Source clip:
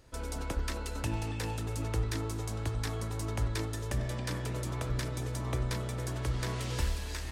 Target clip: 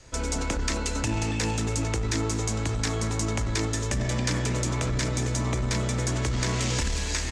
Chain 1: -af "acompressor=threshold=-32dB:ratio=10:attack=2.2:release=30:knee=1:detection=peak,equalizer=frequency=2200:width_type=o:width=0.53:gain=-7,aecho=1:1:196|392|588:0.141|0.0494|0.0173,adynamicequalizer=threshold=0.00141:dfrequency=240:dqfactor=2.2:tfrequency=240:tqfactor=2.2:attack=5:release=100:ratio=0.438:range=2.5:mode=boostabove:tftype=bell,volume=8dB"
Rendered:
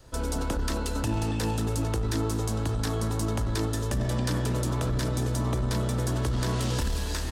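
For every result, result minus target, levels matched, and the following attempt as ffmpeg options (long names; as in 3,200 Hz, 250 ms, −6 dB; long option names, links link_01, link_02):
8,000 Hz band −5.5 dB; 2,000 Hz band −5.0 dB
-af "acompressor=threshold=-32dB:ratio=10:attack=2.2:release=30:knee=1:detection=peak,lowpass=frequency=7000:width_type=q:width=2.8,equalizer=frequency=2200:width_type=o:width=0.53:gain=-7,aecho=1:1:196|392|588:0.141|0.0494|0.0173,adynamicequalizer=threshold=0.00141:dfrequency=240:dqfactor=2.2:tfrequency=240:tqfactor=2.2:attack=5:release=100:ratio=0.438:range=2.5:mode=boostabove:tftype=bell,volume=8dB"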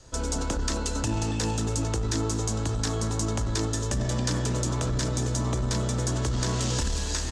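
2,000 Hz band −5.0 dB
-af "acompressor=threshold=-32dB:ratio=10:attack=2.2:release=30:knee=1:detection=peak,lowpass=frequency=7000:width_type=q:width=2.8,equalizer=frequency=2200:width_type=o:width=0.53:gain=4,aecho=1:1:196|392|588:0.141|0.0494|0.0173,adynamicequalizer=threshold=0.00141:dfrequency=240:dqfactor=2.2:tfrequency=240:tqfactor=2.2:attack=5:release=100:ratio=0.438:range=2.5:mode=boostabove:tftype=bell,volume=8dB"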